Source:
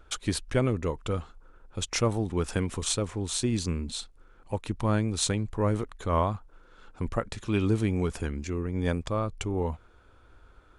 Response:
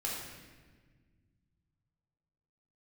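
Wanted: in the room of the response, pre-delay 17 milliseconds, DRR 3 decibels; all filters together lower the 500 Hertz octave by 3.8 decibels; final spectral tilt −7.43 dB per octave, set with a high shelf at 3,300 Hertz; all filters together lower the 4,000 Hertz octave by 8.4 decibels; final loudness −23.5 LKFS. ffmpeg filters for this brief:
-filter_complex "[0:a]equalizer=frequency=500:width_type=o:gain=-4.5,highshelf=frequency=3300:gain=-8,equalizer=frequency=4000:width_type=o:gain=-4.5,asplit=2[link_01][link_02];[1:a]atrim=start_sample=2205,adelay=17[link_03];[link_02][link_03]afir=irnorm=-1:irlink=0,volume=-6.5dB[link_04];[link_01][link_04]amix=inputs=2:normalize=0,volume=5.5dB"

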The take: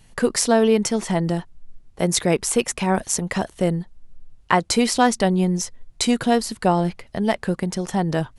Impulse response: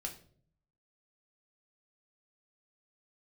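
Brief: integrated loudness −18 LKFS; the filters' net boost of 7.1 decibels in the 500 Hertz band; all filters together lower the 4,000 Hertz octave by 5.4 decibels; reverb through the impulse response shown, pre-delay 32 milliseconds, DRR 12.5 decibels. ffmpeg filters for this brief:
-filter_complex "[0:a]equalizer=frequency=500:width_type=o:gain=8.5,equalizer=frequency=4000:width_type=o:gain=-7.5,asplit=2[link_01][link_02];[1:a]atrim=start_sample=2205,adelay=32[link_03];[link_02][link_03]afir=irnorm=-1:irlink=0,volume=-11dB[link_04];[link_01][link_04]amix=inputs=2:normalize=0,volume=-0.5dB"

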